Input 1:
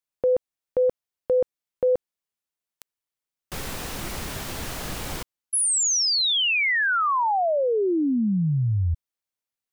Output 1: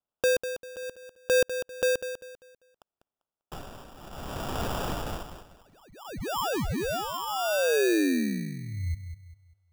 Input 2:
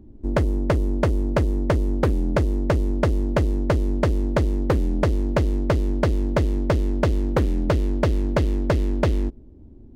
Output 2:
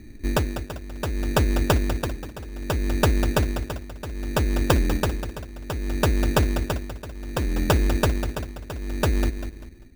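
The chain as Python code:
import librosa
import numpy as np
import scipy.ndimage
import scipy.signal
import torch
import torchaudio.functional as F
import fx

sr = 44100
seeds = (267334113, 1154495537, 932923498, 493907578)

y = fx.peak_eq(x, sr, hz=1400.0, db=12.0, octaves=0.69)
y = y * (1.0 - 0.87 / 2.0 + 0.87 / 2.0 * np.cos(2.0 * np.pi * 0.64 * (np.arange(len(y)) / sr)))
y = fx.air_absorb(y, sr, metres=450.0)
y = fx.echo_feedback(y, sr, ms=197, feedback_pct=32, wet_db=-10)
y = fx.rider(y, sr, range_db=3, speed_s=2.0)
y = fx.sample_hold(y, sr, seeds[0], rate_hz=2100.0, jitter_pct=0)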